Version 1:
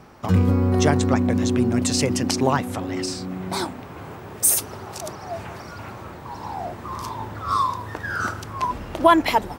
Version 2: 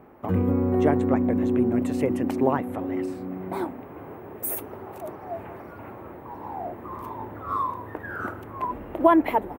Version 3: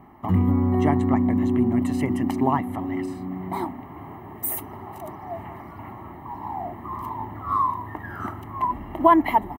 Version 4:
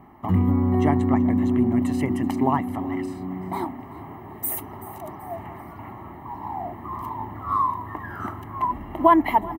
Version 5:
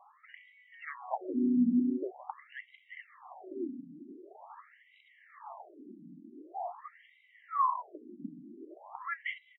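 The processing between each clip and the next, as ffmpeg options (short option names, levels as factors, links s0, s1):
-af "firequalizer=gain_entry='entry(150,0);entry(290,9);entry(1400,0);entry(2000,1);entry(5000,-22);entry(15000,6)':delay=0.05:min_phase=1,volume=0.398"
-af "aecho=1:1:1:0.83"
-af "aecho=1:1:381|762|1143:0.106|0.0434|0.0178"
-af "afftfilt=real='re*between(b*sr/1024,230*pow(2800/230,0.5+0.5*sin(2*PI*0.45*pts/sr))/1.41,230*pow(2800/230,0.5+0.5*sin(2*PI*0.45*pts/sr))*1.41)':imag='im*between(b*sr/1024,230*pow(2800/230,0.5+0.5*sin(2*PI*0.45*pts/sr))/1.41,230*pow(2800/230,0.5+0.5*sin(2*PI*0.45*pts/sr))*1.41)':win_size=1024:overlap=0.75,volume=0.562"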